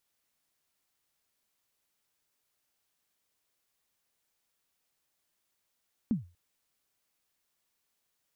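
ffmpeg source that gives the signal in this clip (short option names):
-f lavfi -i "aevalsrc='0.0891*pow(10,-3*t/0.31)*sin(2*PI*(250*0.137/log(87/250)*(exp(log(87/250)*min(t,0.137)/0.137)-1)+87*max(t-0.137,0)))':d=0.24:s=44100"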